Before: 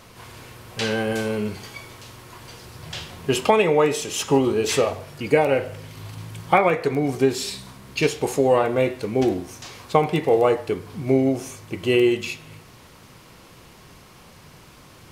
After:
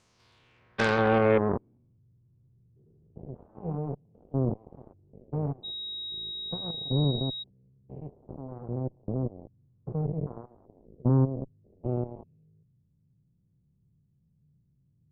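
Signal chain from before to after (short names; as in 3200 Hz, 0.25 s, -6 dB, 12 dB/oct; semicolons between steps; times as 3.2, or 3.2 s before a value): stepped spectrum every 0.2 s; low-pass sweep 7700 Hz -> 150 Hz, 0–2.02; added harmonics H 7 -16 dB, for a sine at -11.5 dBFS; 5.63–7.42 whine 3800 Hz -34 dBFS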